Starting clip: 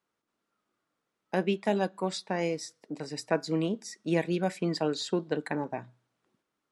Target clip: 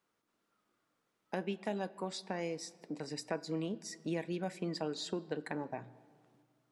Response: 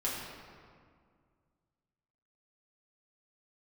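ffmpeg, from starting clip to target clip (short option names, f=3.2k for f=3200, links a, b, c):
-filter_complex "[0:a]acompressor=threshold=-44dB:ratio=2,asplit=2[a][b];[1:a]atrim=start_sample=2205[c];[b][c]afir=irnorm=-1:irlink=0,volume=-21dB[d];[a][d]amix=inputs=2:normalize=0,volume=1dB"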